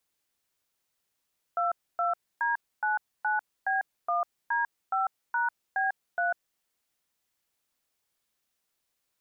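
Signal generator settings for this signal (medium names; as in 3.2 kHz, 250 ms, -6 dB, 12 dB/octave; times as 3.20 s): DTMF "22D99B1D5#B3", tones 147 ms, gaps 272 ms, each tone -27 dBFS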